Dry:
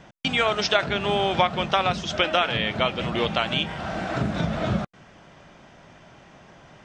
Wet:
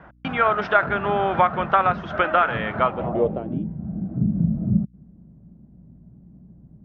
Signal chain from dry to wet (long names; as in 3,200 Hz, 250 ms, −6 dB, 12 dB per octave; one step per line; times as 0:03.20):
mains hum 60 Hz, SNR 30 dB
low-pass filter sweep 1,400 Hz → 200 Hz, 0:02.79–0:03.73